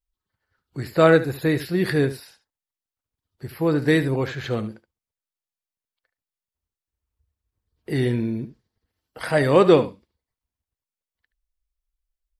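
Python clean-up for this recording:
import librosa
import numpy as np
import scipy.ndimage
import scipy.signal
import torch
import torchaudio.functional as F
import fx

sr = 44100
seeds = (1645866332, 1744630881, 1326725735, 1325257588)

y = fx.fix_echo_inverse(x, sr, delay_ms=74, level_db=-14.0)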